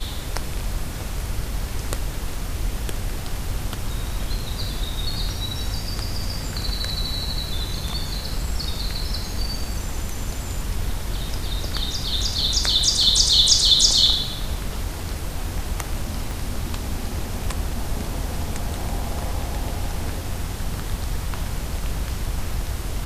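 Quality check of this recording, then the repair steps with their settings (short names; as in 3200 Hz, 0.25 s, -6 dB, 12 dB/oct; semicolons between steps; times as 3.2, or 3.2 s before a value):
16.31 pop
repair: de-click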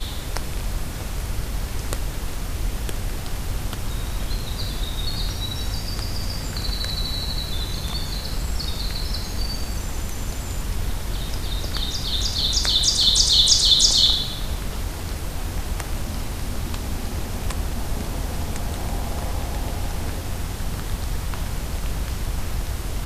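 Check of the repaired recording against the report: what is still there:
16.31 pop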